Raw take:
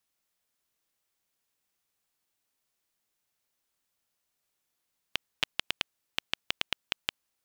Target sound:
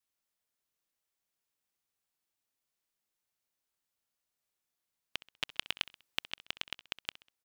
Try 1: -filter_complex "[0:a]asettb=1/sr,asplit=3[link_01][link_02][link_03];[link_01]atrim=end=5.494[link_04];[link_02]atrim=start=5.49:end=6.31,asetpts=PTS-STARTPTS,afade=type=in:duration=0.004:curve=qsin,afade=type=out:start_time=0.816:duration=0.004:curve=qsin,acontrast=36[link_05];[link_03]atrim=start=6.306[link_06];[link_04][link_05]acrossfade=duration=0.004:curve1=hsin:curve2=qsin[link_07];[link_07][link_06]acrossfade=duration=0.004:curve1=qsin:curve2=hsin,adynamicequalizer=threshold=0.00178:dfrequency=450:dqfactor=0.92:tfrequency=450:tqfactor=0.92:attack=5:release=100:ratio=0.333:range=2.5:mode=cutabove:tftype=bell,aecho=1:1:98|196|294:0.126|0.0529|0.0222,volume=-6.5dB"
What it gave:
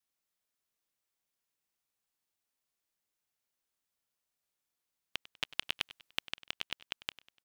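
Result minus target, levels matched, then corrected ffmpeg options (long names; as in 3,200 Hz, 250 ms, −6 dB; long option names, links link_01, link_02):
echo 33 ms late
-filter_complex "[0:a]asettb=1/sr,asplit=3[link_01][link_02][link_03];[link_01]atrim=end=5.494[link_04];[link_02]atrim=start=5.49:end=6.31,asetpts=PTS-STARTPTS,afade=type=in:duration=0.004:curve=qsin,afade=type=out:start_time=0.816:duration=0.004:curve=qsin,acontrast=36[link_05];[link_03]atrim=start=6.306[link_06];[link_04][link_05]acrossfade=duration=0.004:curve1=hsin:curve2=qsin[link_07];[link_07][link_06]acrossfade=duration=0.004:curve1=qsin:curve2=hsin,adynamicequalizer=threshold=0.00178:dfrequency=450:dqfactor=0.92:tfrequency=450:tqfactor=0.92:attack=5:release=100:ratio=0.333:range=2.5:mode=cutabove:tftype=bell,aecho=1:1:65|130|195:0.126|0.0529|0.0222,volume=-6.5dB"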